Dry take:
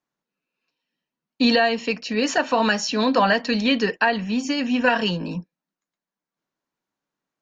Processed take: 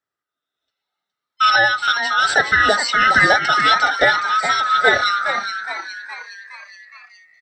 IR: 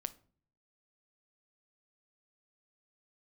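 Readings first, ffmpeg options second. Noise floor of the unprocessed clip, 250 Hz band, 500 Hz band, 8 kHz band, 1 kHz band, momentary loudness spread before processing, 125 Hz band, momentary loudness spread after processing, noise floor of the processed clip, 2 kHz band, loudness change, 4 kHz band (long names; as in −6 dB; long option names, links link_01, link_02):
below −85 dBFS, −12.5 dB, −0.5 dB, can't be measured, +8.5 dB, 7 LU, −2.5 dB, 15 LU, below −85 dBFS, +10.0 dB, +6.0 dB, +5.5 dB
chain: -filter_complex "[0:a]afftfilt=real='real(if(lt(b,960),b+48*(1-2*mod(floor(b/48),2)),b),0)':imag='imag(if(lt(b,960),b+48*(1-2*mod(floor(b/48),2)),b),0)':win_size=2048:overlap=0.75,highshelf=frequency=4000:gain=-4,asplit=6[link_01][link_02][link_03][link_04][link_05][link_06];[link_02]adelay=416,afreqshift=130,volume=-8.5dB[link_07];[link_03]adelay=832,afreqshift=260,volume=-15.1dB[link_08];[link_04]adelay=1248,afreqshift=390,volume=-21.6dB[link_09];[link_05]adelay=1664,afreqshift=520,volume=-28.2dB[link_10];[link_06]adelay=2080,afreqshift=650,volume=-34.7dB[link_11];[link_01][link_07][link_08][link_09][link_10][link_11]amix=inputs=6:normalize=0,dynaudnorm=framelen=590:gausssize=5:maxgain=12.5dB,highpass=frequency=180:poles=1,adynamicequalizer=threshold=0.0282:dfrequency=1000:dqfactor=4:tfrequency=1000:tqfactor=4:attack=5:release=100:ratio=0.375:range=1.5:mode=cutabove:tftype=bell"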